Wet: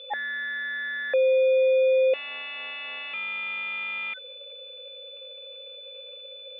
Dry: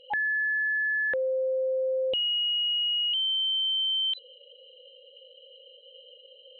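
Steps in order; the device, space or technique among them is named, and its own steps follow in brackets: toy sound module (decimation joined by straight lines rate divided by 8×; pulse-width modulation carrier 3500 Hz; speaker cabinet 560–3500 Hz, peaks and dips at 560 Hz +6 dB, 940 Hz -9 dB, 1600 Hz -5 dB, 2400 Hz +7 dB); gain +7 dB

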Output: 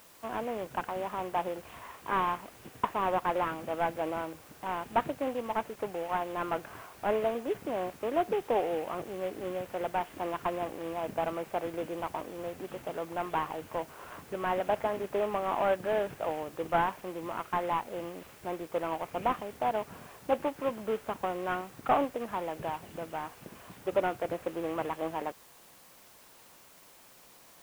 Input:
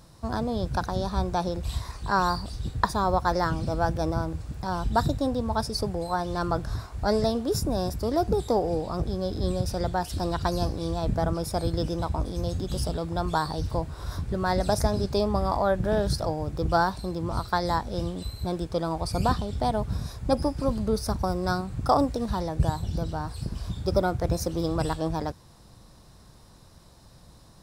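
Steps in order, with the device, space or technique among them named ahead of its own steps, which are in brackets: army field radio (BPF 390–2900 Hz; CVSD 16 kbps; white noise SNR 24 dB); gain -1.5 dB

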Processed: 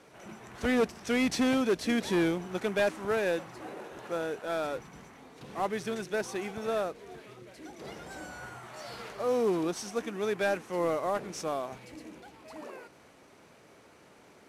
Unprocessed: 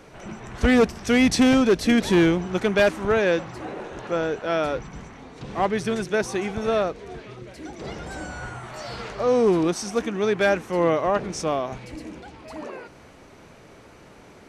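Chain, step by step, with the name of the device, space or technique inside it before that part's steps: early wireless headset (HPF 200 Hz 6 dB/oct; CVSD 64 kbps); gain -7.5 dB

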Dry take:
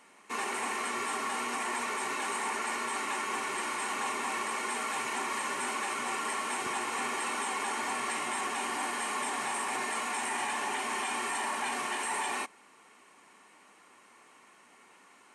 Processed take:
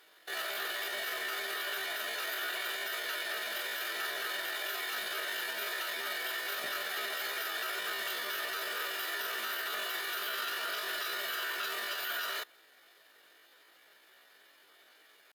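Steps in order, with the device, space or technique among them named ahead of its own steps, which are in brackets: chipmunk voice (pitch shift +8.5 st); gain -2.5 dB

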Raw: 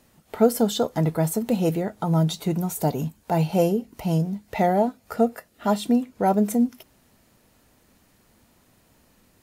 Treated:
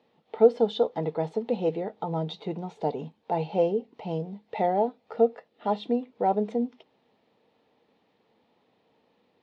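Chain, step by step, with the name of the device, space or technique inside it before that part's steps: kitchen radio (speaker cabinet 190–3900 Hz, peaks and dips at 460 Hz +10 dB, 830 Hz +7 dB, 1500 Hz -6 dB, 3600 Hz +4 dB); gain -7.5 dB

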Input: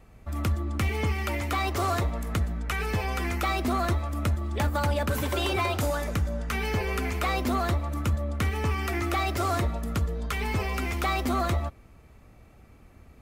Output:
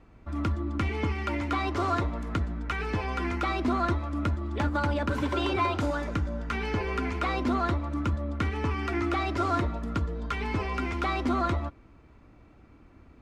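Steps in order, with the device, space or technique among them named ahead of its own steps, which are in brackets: inside a cardboard box (LPF 4800 Hz 12 dB/oct; small resonant body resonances 300/1000/1400 Hz, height 9 dB, ringing for 35 ms); gain -3 dB

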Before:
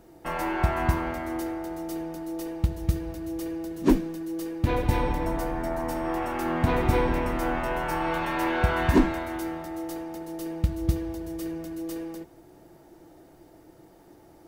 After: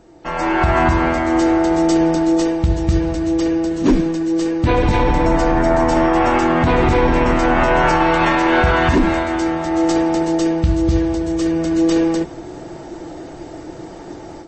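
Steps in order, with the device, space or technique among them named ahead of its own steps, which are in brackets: notches 50/100/150/200 Hz; low-bitrate web radio (AGC gain up to 14.5 dB; limiter -11.5 dBFS, peak gain reduction 10 dB; gain +6 dB; MP3 32 kbps 24000 Hz)

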